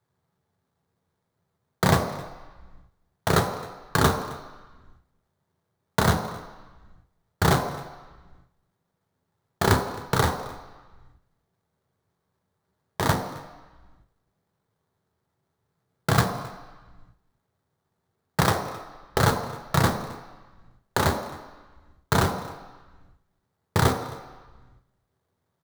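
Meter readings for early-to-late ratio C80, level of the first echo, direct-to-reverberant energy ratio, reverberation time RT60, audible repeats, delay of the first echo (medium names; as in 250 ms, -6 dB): 9.5 dB, -21.0 dB, 4.5 dB, 1.2 s, 1, 265 ms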